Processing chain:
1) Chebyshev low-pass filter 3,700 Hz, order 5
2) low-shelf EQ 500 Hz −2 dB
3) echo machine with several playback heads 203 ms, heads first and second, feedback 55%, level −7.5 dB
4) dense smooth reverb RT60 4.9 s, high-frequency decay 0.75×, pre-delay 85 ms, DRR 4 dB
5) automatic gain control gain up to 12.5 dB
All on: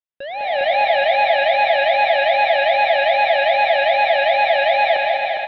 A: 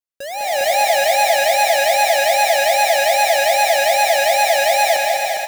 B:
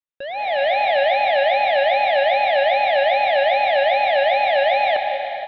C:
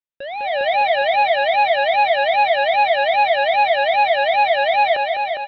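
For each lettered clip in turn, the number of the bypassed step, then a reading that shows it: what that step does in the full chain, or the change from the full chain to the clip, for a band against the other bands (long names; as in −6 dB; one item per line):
1, 4 kHz band +3.0 dB
3, 2 kHz band −1.5 dB
4, 1 kHz band +2.0 dB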